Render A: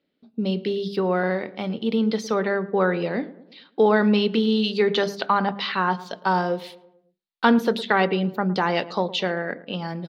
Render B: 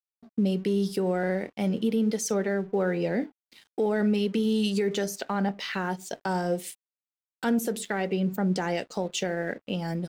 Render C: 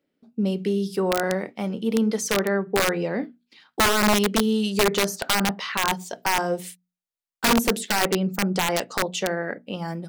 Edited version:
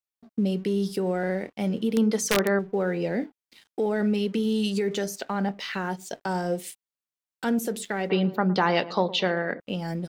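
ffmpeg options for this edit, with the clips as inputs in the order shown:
ffmpeg -i take0.wav -i take1.wav -i take2.wav -filter_complex "[1:a]asplit=3[link_01][link_02][link_03];[link_01]atrim=end=1.972[link_04];[2:a]atrim=start=1.968:end=2.592[link_05];[link_02]atrim=start=2.588:end=8.102[link_06];[0:a]atrim=start=8.098:end=9.602[link_07];[link_03]atrim=start=9.598[link_08];[link_04][link_05]acrossfade=duration=0.004:curve1=hsin:curve2=hsin[link_09];[link_09][link_06]acrossfade=duration=0.004:curve1=hsin:curve2=hsin[link_10];[link_10][link_07]acrossfade=duration=0.004:curve1=hsin:curve2=hsin[link_11];[link_11][link_08]acrossfade=duration=0.004:curve1=hsin:curve2=hsin" out.wav

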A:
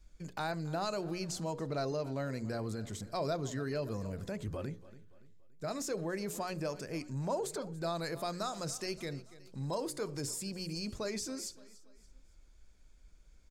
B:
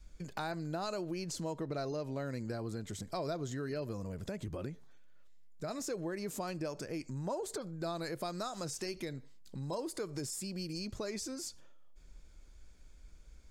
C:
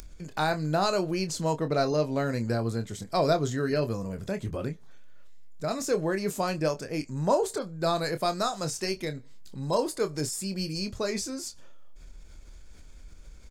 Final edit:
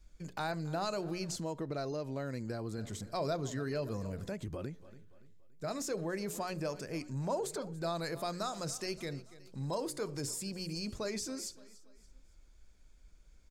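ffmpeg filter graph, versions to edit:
ffmpeg -i take0.wav -i take1.wav -filter_complex "[1:a]asplit=2[link_01][link_02];[0:a]asplit=3[link_03][link_04][link_05];[link_03]atrim=end=1.362[link_06];[link_01]atrim=start=1.358:end=2.782[link_07];[link_04]atrim=start=2.778:end=4.342[link_08];[link_02]atrim=start=4.338:end=4.802[link_09];[link_05]atrim=start=4.798[link_10];[link_06][link_07]acrossfade=duration=0.004:curve1=hsin:curve2=hsin[link_11];[link_11][link_08]acrossfade=duration=0.004:curve1=hsin:curve2=hsin[link_12];[link_12][link_09]acrossfade=duration=0.004:curve1=hsin:curve2=hsin[link_13];[link_13][link_10]acrossfade=duration=0.004:curve1=hsin:curve2=hsin" out.wav

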